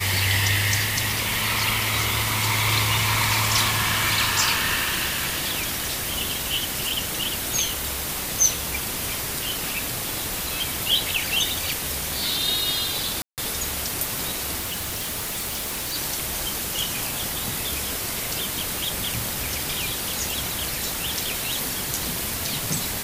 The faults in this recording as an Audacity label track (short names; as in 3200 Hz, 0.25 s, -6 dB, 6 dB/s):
13.220000	13.380000	gap 0.158 s
14.590000	15.960000	clipped -25 dBFS